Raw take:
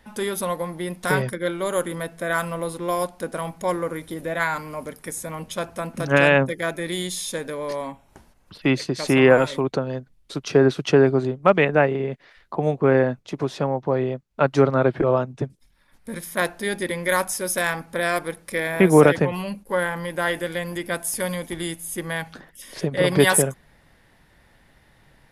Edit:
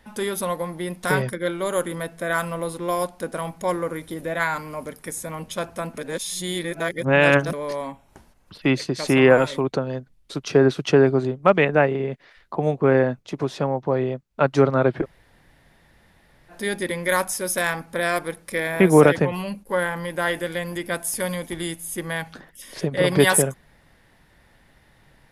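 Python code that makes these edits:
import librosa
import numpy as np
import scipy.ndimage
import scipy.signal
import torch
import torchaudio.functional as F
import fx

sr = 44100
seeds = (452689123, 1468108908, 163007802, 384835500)

y = fx.edit(x, sr, fx.reverse_span(start_s=5.98, length_s=1.55),
    fx.room_tone_fill(start_s=15.03, length_s=1.48, crossfade_s=0.06), tone=tone)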